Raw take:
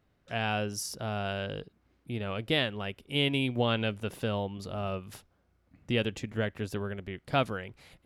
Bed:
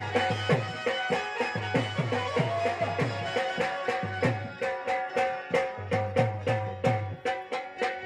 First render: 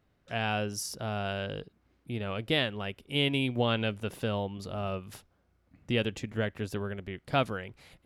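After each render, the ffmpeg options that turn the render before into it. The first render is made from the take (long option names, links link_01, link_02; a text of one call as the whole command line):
ffmpeg -i in.wav -af anull out.wav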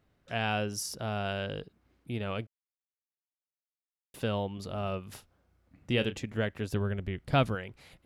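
ffmpeg -i in.wav -filter_complex "[0:a]asettb=1/sr,asplit=3[link_01][link_02][link_03];[link_01]atrim=end=5.094[link_04];[link_02]atrim=start=5.09:end=6.18,asetpts=PTS-STARTPTS,afade=type=in:duration=0.004:curve=qsin,afade=type=out:start_time=1.086:duration=0.004:curve=qsin,asplit=2[link_05][link_06];[link_06]adelay=32,volume=-12dB[link_07];[link_05][link_07]amix=inputs=2:normalize=0,atrim=end_sample=48069[link_08];[link_03]atrim=start=6.176[link_09];[link_04][link_08]acrossfade=duration=0.004:curve1=hsin:curve2=qsin[link_10];[link_10][link_09]acrossfade=duration=0.004:curve1=qsin:curve2=hsin,asettb=1/sr,asplit=3[link_11][link_12][link_13];[link_11]atrim=end=6.724[link_14];[link_12]atrim=start=6.72:end=7.55,asetpts=PTS-STARTPTS,afade=type=in:duration=0.004:curve=qsin,afade=type=out:start_time=0.826:duration=0.004:curve=qsin,lowshelf=frequency=140:gain=11[link_15];[link_13]atrim=start=7.546[link_16];[link_14][link_15]acrossfade=duration=0.004:curve1=hsin:curve2=qsin[link_17];[link_17][link_16]acrossfade=duration=0.004:curve1=qsin:curve2=hsin,asplit=3[link_18][link_19][link_20];[link_18]atrim=end=2.47,asetpts=PTS-STARTPTS,afade=type=out:start_time=2.466:duration=0.004:curve=hsin[link_21];[link_19]atrim=start=2.47:end=4.14,asetpts=PTS-STARTPTS,volume=0[link_22];[link_20]atrim=start=4.14,asetpts=PTS-STARTPTS,afade=type=in:duration=0.004:curve=hsin[link_23];[link_21][link_22][link_23]concat=n=3:v=0:a=1" out.wav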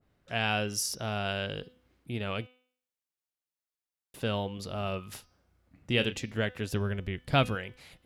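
ffmpeg -i in.wav -af "bandreject=frequency=251.4:width_type=h:width=4,bandreject=frequency=502.8:width_type=h:width=4,bandreject=frequency=754.2:width_type=h:width=4,bandreject=frequency=1005.6:width_type=h:width=4,bandreject=frequency=1257:width_type=h:width=4,bandreject=frequency=1508.4:width_type=h:width=4,bandreject=frequency=1759.8:width_type=h:width=4,bandreject=frequency=2011.2:width_type=h:width=4,bandreject=frequency=2262.6:width_type=h:width=4,bandreject=frequency=2514:width_type=h:width=4,bandreject=frequency=2765.4:width_type=h:width=4,bandreject=frequency=3016.8:width_type=h:width=4,bandreject=frequency=3268.2:width_type=h:width=4,bandreject=frequency=3519.6:width_type=h:width=4,bandreject=frequency=3771:width_type=h:width=4,bandreject=frequency=4022.4:width_type=h:width=4,bandreject=frequency=4273.8:width_type=h:width=4,bandreject=frequency=4525.2:width_type=h:width=4,bandreject=frequency=4776.6:width_type=h:width=4,bandreject=frequency=5028:width_type=h:width=4,bandreject=frequency=5279.4:width_type=h:width=4,bandreject=frequency=5530.8:width_type=h:width=4,bandreject=frequency=5782.2:width_type=h:width=4,bandreject=frequency=6033.6:width_type=h:width=4,bandreject=frequency=6285:width_type=h:width=4,adynamicequalizer=threshold=0.00501:dfrequency=1600:dqfactor=0.7:tfrequency=1600:tqfactor=0.7:attack=5:release=100:ratio=0.375:range=2.5:mode=boostabove:tftype=highshelf" out.wav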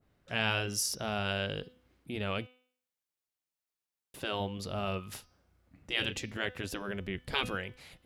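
ffmpeg -i in.wav -af "afftfilt=real='re*lt(hypot(re,im),0.158)':imag='im*lt(hypot(re,im),0.158)':win_size=1024:overlap=0.75" out.wav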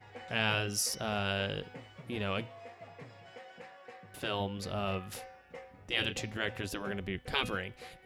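ffmpeg -i in.wav -i bed.wav -filter_complex "[1:a]volume=-21.5dB[link_01];[0:a][link_01]amix=inputs=2:normalize=0" out.wav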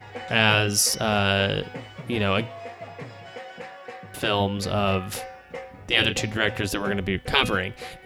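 ffmpeg -i in.wav -af "volume=11.5dB" out.wav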